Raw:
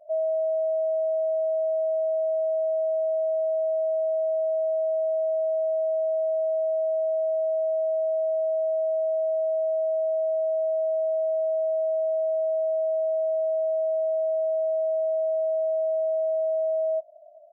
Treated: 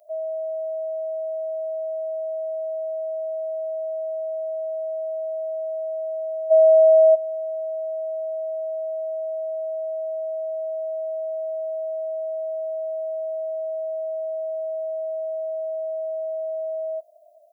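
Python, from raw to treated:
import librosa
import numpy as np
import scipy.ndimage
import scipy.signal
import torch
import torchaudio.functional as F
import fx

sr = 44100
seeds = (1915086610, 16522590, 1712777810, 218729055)

y = fx.tilt_eq(x, sr, slope=5.0)
y = fx.small_body(y, sr, hz=(660.0,), ring_ms=20, db=16, at=(6.5, 7.14), fade=0.02)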